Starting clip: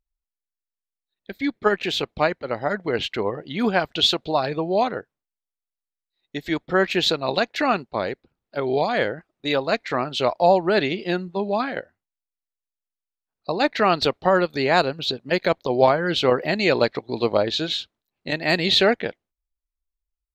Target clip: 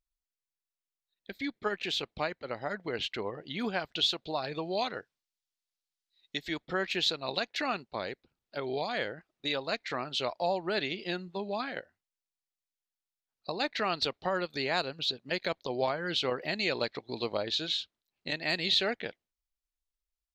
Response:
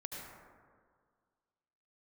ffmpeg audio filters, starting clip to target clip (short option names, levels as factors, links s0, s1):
-af "asetnsamples=n=441:p=0,asendcmd='4.55 equalizer g 15;6.39 equalizer g 8',equalizer=f=4400:t=o:w=2.4:g=6.5,acompressor=threshold=0.0282:ratio=1.5,volume=0.422"